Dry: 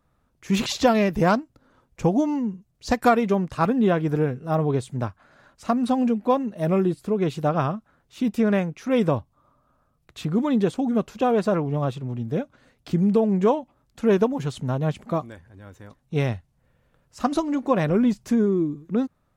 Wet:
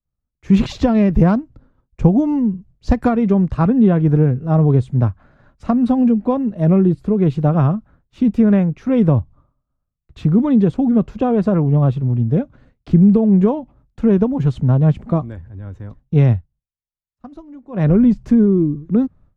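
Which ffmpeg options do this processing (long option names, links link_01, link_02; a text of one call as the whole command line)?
ffmpeg -i in.wav -filter_complex "[0:a]asplit=3[link_01][link_02][link_03];[link_01]atrim=end=16.47,asetpts=PTS-STARTPTS,afade=type=out:start_time=16.33:duration=0.14:silence=0.0944061[link_04];[link_02]atrim=start=16.47:end=17.72,asetpts=PTS-STARTPTS,volume=-20.5dB[link_05];[link_03]atrim=start=17.72,asetpts=PTS-STARTPTS,afade=type=in:duration=0.14:silence=0.0944061[link_06];[link_04][link_05][link_06]concat=n=3:v=0:a=1,agate=range=-33dB:threshold=-50dB:ratio=3:detection=peak,aemphasis=mode=reproduction:type=riaa,acrossover=split=240[link_07][link_08];[link_08]acompressor=threshold=-17dB:ratio=6[link_09];[link_07][link_09]amix=inputs=2:normalize=0,volume=2dB" out.wav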